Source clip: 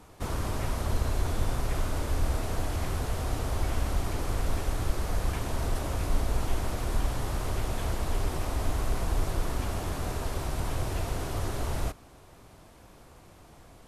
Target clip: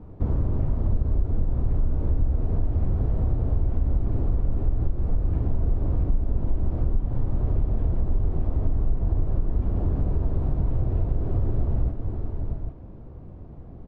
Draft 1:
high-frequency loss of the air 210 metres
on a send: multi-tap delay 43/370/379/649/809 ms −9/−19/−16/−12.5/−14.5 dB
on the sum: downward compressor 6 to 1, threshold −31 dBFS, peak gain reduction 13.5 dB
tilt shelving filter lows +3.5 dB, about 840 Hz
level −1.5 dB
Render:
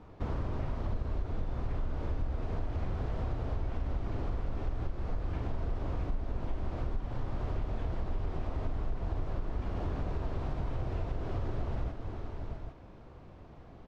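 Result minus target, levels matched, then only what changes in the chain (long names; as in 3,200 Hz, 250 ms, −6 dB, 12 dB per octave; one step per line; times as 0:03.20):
1,000 Hz band +10.5 dB
change: tilt shelving filter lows +15 dB, about 840 Hz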